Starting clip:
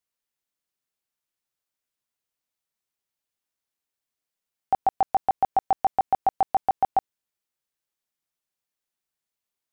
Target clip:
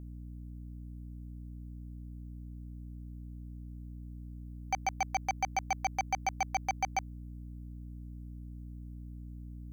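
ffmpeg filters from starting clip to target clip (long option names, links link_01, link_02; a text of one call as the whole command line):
ffmpeg -i in.wav -af "aeval=exprs='0.211*(cos(1*acos(clip(val(0)/0.211,-1,1)))-cos(1*PI/2))+0.0335*(cos(3*acos(clip(val(0)/0.211,-1,1)))-cos(3*PI/2))+0.00841*(cos(8*acos(clip(val(0)/0.211,-1,1)))-cos(8*PI/2))':channel_layout=same,aderivative,aeval=exprs='val(0)+0.00282*(sin(2*PI*60*n/s)+sin(2*PI*2*60*n/s)/2+sin(2*PI*3*60*n/s)/3+sin(2*PI*4*60*n/s)/4+sin(2*PI*5*60*n/s)/5)':channel_layout=same,volume=8dB" out.wav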